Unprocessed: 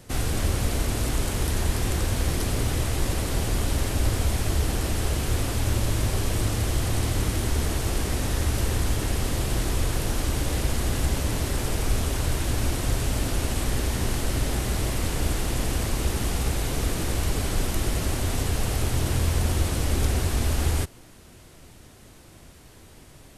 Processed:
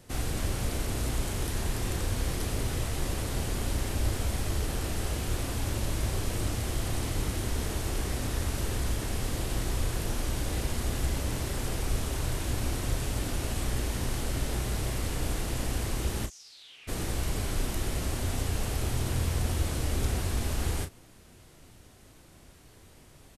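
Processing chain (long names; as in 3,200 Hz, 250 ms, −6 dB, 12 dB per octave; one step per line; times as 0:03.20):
0:16.25–0:16.87: resonant band-pass 7,100 Hz → 2,400 Hz, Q 6
double-tracking delay 33 ms −8 dB
level −6 dB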